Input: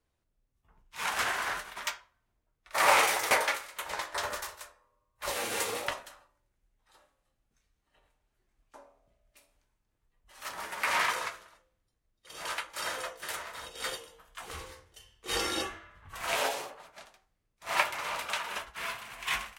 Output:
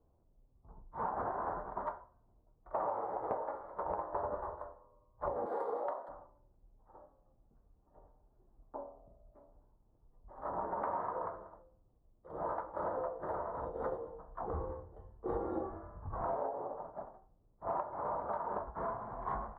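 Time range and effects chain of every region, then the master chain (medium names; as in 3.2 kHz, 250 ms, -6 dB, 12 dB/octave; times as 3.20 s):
5.46–6.09 s: high-pass 440 Hz + peaking EQ 5.1 kHz +14 dB 1.4 oct
whole clip: inverse Chebyshev low-pass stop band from 2.4 kHz, stop band 50 dB; compression 20:1, threshold -43 dBFS; trim +10 dB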